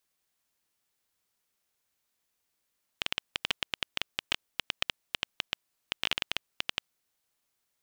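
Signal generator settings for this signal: random clicks 10/s -9.5 dBFS 3.89 s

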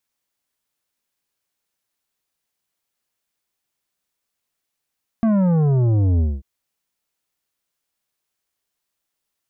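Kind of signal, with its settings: sub drop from 230 Hz, over 1.19 s, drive 10 dB, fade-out 0.22 s, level -15 dB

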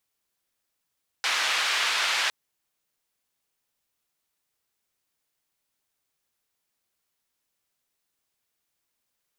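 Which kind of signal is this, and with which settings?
noise band 1100–3300 Hz, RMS -25.5 dBFS 1.06 s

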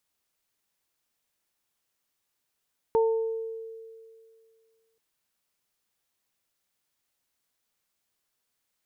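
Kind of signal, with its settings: additive tone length 2.03 s, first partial 450 Hz, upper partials -7 dB, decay 2.25 s, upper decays 0.74 s, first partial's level -18.5 dB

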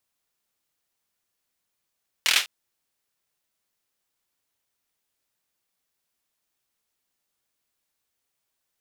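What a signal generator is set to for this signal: hand clap length 0.20 s, bursts 5, apart 25 ms, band 2700 Hz, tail 0.23 s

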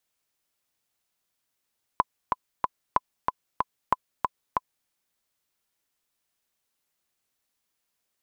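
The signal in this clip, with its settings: metronome 187 bpm, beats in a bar 3, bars 3, 1010 Hz, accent 3.5 dB -6.5 dBFS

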